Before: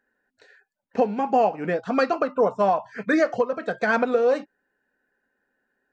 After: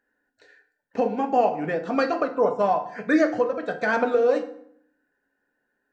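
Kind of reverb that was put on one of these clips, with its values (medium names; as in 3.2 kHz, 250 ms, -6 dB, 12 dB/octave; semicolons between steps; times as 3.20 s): FDN reverb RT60 0.67 s, low-frequency decay 1.3×, high-frequency decay 0.7×, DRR 6 dB; trim -2 dB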